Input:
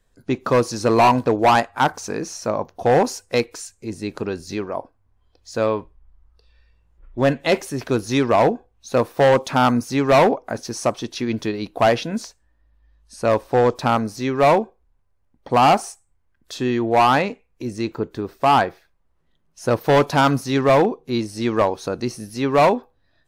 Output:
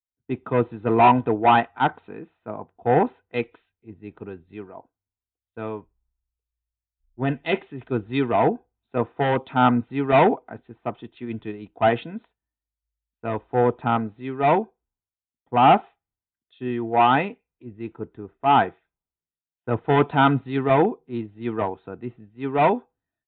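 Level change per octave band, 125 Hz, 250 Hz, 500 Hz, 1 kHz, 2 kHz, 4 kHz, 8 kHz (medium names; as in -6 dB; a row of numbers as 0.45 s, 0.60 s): -2.5 dB, -3.0 dB, -5.0 dB, -1.5 dB, -3.5 dB, -7.0 dB, under -40 dB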